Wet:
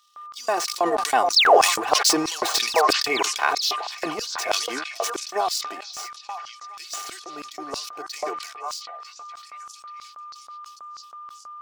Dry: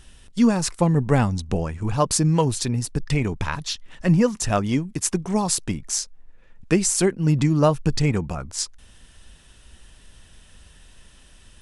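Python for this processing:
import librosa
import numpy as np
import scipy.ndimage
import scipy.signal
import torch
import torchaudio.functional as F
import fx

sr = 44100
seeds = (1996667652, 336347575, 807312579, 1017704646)

p1 = scipy.signal.medfilt(x, 5)
p2 = fx.doppler_pass(p1, sr, speed_mps=14, closest_m=14.0, pass_at_s=2.39)
p3 = fx.level_steps(p2, sr, step_db=10)
p4 = p2 + (p3 * librosa.db_to_amplitude(1.0))
p5 = p4 + 0.76 * np.pad(p4, (int(2.7 * sr / 1000.0), 0))[:len(p4)]
p6 = fx.spec_paint(p5, sr, seeds[0], shape='fall', start_s=1.36, length_s=0.22, low_hz=330.0, high_hz=5800.0, level_db=-19.0)
p7 = fx.leveller(p6, sr, passes=1)
p8 = scipy.signal.sosfilt(scipy.signal.butter(2, 190.0, 'highpass', fs=sr, output='sos'), p7)
p9 = p8 + fx.echo_stepped(p8, sr, ms=445, hz=690.0, octaves=0.7, feedback_pct=70, wet_db=-3, dry=0)
p10 = p9 + 10.0 ** (-36.0 / 20.0) * np.sin(2.0 * np.pi * 1200.0 * np.arange(len(p9)) / sr)
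p11 = fx.filter_lfo_highpass(p10, sr, shape='square', hz=3.1, low_hz=620.0, high_hz=4600.0, q=1.9)
p12 = fx.sustainer(p11, sr, db_per_s=58.0)
y = p12 * librosa.db_to_amplitude(-2.5)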